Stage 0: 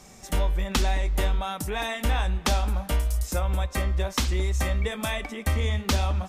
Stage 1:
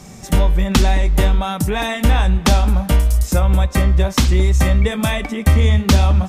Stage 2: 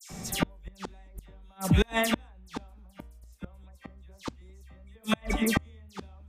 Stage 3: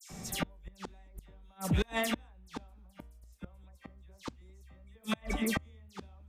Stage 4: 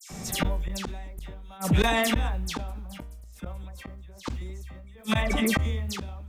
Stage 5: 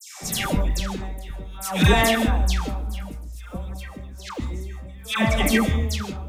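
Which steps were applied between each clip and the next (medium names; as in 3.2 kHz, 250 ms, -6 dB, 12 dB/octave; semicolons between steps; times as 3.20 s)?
peaking EQ 140 Hz +9.5 dB 1.9 oct; trim +7.5 dB
phase dispersion lows, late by 102 ms, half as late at 2.3 kHz; inverted gate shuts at -8 dBFS, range -35 dB; trim -2.5 dB
saturation -16.5 dBFS, distortion -16 dB; trim -4.5 dB
decay stretcher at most 25 dB/s; trim +6.5 dB
phase dispersion lows, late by 121 ms, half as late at 930 Hz; on a send at -10.5 dB: reverberation, pre-delay 3 ms; on the sum: trim +5 dB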